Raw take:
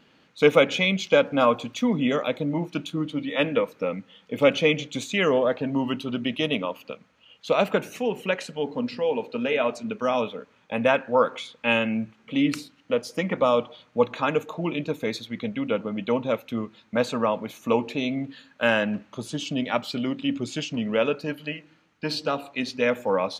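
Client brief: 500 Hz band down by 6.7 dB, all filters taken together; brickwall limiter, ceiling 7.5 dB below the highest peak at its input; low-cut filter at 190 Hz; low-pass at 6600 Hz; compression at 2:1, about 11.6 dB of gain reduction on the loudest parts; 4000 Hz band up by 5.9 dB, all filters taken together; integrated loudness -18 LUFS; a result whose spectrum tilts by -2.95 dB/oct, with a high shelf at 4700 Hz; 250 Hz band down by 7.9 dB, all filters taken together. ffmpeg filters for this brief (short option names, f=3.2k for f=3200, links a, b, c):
-af "highpass=190,lowpass=6.6k,equalizer=f=250:t=o:g=-6,equalizer=f=500:t=o:g=-6.5,equalizer=f=4k:t=o:g=5,highshelf=f=4.7k:g=7.5,acompressor=threshold=-38dB:ratio=2,volume=19dB,alimiter=limit=-4dB:level=0:latency=1"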